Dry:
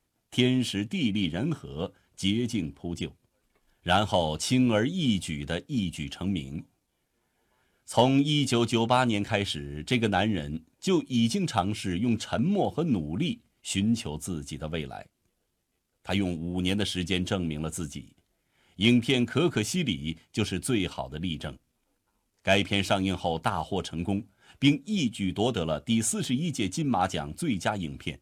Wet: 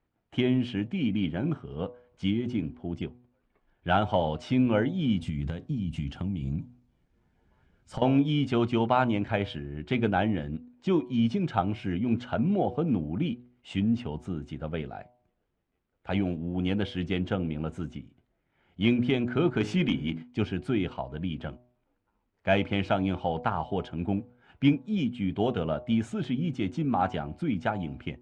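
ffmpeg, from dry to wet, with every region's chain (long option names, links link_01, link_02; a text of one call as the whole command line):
ffmpeg -i in.wav -filter_complex "[0:a]asettb=1/sr,asplit=3[link_01][link_02][link_03];[link_01]atrim=end=5.214[link_04];[link_02]atrim=start=5.21:end=8.02,asetpts=PTS-STARTPTS,afade=type=in:duration=0.004:curve=qsin,afade=type=out:start_time=2.806:duration=0.004:curve=qsin,acompressor=threshold=-34dB:ratio=12:attack=3.2:release=140:knee=1:detection=peak,bass=frequency=250:gain=12,treble=frequency=4000:gain=11[link_05];[link_03]atrim=start=8.016[link_06];[link_04][link_05]acrossfade=duration=0.004:curve1=hsin:curve2=qsin[link_07];[link_07][link_06]acrossfade=duration=0.004:curve1=qsin:curve2=hsin,asettb=1/sr,asplit=3[link_08][link_09][link_10];[link_08]atrim=end=19.604[link_11];[link_09]atrim=start=19.6:end=20.23,asetpts=PTS-STARTPTS,afade=type=in:duration=0.004:curve=qsin,afade=type=out:start_time=0.626:duration=0.004:curve=qsin,lowshelf=frequency=110:gain=-11.5,bandreject=frequency=52.28:width_type=h:width=4,bandreject=frequency=104.56:width_type=h:width=4,bandreject=frequency=156.84:width_type=h:width=4,bandreject=frequency=209.12:width_type=h:width=4,bandreject=frequency=261.4:width_type=h:width=4,bandreject=frequency=313.68:width_type=h:width=4,bandreject=frequency=365.96:width_type=h:width=4,bandreject=frequency=418.24:width_type=h:width=4,bandreject=frequency=470.52:width_type=h:width=4,bandreject=frequency=522.8:width_type=h:width=4,bandreject=frequency=575.08:width_type=h:width=4,bandreject=frequency=627.36:width_type=h:width=4,bandreject=frequency=679.64:width_type=h:width=4,bandreject=frequency=731.92:width_type=h:width=4,bandreject=frequency=784.2:width_type=h:width=4,bandreject=frequency=836.48:width_type=h:width=4,bandreject=frequency=888.76:width_type=h:width=4,bandreject=frequency=941.04:width_type=h:width=4,bandreject=frequency=993.32:width_type=h:width=4,bandreject=frequency=1045.6:width_type=h:width=4,bandreject=frequency=1097.88:width_type=h:width=4,bandreject=frequency=1150.16:width_type=h:width=4,bandreject=frequency=1202.44:width_type=h:width=4,bandreject=frequency=1254.72:width_type=h:width=4,bandreject=frequency=1307:width_type=h:width=4,bandreject=frequency=1359.28:width_type=h:width=4,bandreject=frequency=1411.56:width_type=h:width=4,bandreject=frequency=1463.84:width_type=h:width=4,bandreject=frequency=1516.12:width_type=h:width=4,bandreject=frequency=1568.4:width_type=h:width=4,bandreject=frequency=1620.68:width_type=h:width=4,bandreject=frequency=1672.96:width_type=h:width=4,bandreject=frequency=1725.24:width_type=h:width=4,bandreject=frequency=1777.52:width_type=h:width=4,aeval=exprs='0.178*sin(PI/2*1.41*val(0)/0.178)':channel_layout=same[link_12];[link_10]atrim=start=20.226[link_13];[link_11][link_12]acrossfade=duration=0.004:curve1=hsin:curve2=qsin[link_14];[link_14][link_13]acrossfade=duration=0.004:curve1=qsin:curve2=hsin,lowpass=2000,bandreject=frequency=122.7:width_type=h:width=4,bandreject=frequency=245.4:width_type=h:width=4,bandreject=frequency=368.1:width_type=h:width=4,bandreject=frequency=490.8:width_type=h:width=4,bandreject=frequency=613.5:width_type=h:width=4,bandreject=frequency=736.2:width_type=h:width=4,bandreject=frequency=858.9:width_type=h:width=4,bandreject=frequency=981.6:width_type=h:width=4,bandreject=frequency=1104.3:width_type=h:width=4" out.wav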